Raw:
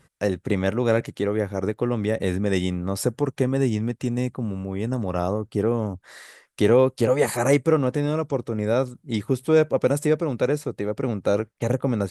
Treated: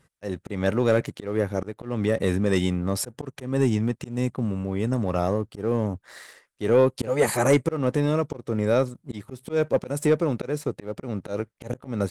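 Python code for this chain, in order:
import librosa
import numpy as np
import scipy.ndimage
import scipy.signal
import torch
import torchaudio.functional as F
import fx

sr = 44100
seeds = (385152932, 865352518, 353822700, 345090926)

y = fx.auto_swell(x, sr, attack_ms=197.0)
y = fx.leveller(y, sr, passes=1)
y = F.gain(torch.from_numpy(y), -2.5).numpy()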